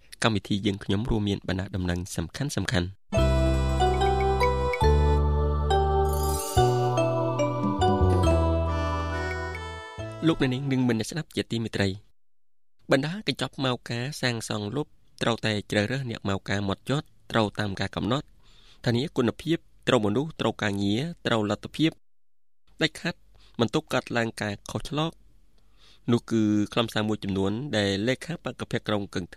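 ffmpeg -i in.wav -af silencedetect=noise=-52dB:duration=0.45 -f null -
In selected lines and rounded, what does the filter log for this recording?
silence_start: 12.11
silence_end: 12.80 | silence_duration: 0.69
silence_start: 21.98
silence_end: 22.68 | silence_duration: 0.70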